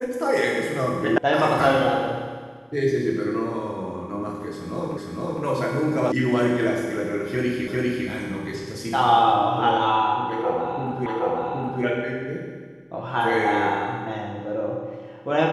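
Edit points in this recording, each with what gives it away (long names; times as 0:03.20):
0:01.18: cut off before it has died away
0:04.97: the same again, the last 0.46 s
0:06.12: cut off before it has died away
0:07.68: the same again, the last 0.4 s
0:11.06: the same again, the last 0.77 s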